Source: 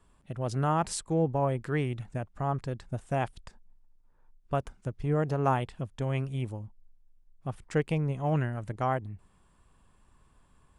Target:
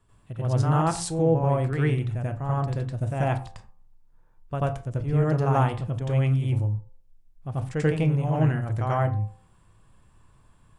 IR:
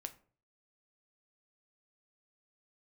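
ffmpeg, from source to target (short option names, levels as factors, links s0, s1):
-filter_complex "[0:a]equalizer=f=110:w=1.9:g=8,bandreject=f=86.71:t=h:w=4,bandreject=f=173.42:t=h:w=4,bandreject=f=260.13:t=h:w=4,bandreject=f=346.84:t=h:w=4,bandreject=f=433.55:t=h:w=4,bandreject=f=520.26:t=h:w=4,bandreject=f=606.97:t=h:w=4,bandreject=f=693.68:t=h:w=4,bandreject=f=780.39:t=h:w=4,bandreject=f=867.1:t=h:w=4,bandreject=f=953.81:t=h:w=4,bandreject=f=1040.52:t=h:w=4,bandreject=f=1127.23:t=h:w=4,bandreject=f=1213.94:t=h:w=4,asplit=2[s0][s1];[1:a]atrim=start_sample=2205,atrim=end_sample=6174,adelay=88[s2];[s1][s2]afir=irnorm=-1:irlink=0,volume=2.82[s3];[s0][s3]amix=inputs=2:normalize=0,volume=0.708"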